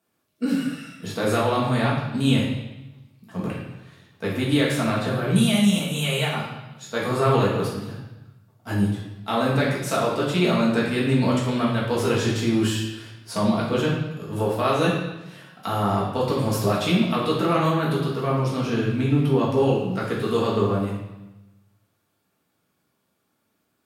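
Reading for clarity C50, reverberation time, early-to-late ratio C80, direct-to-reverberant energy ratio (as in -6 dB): 2.0 dB, 1.0 s, 5.0 dB, -6.0 dB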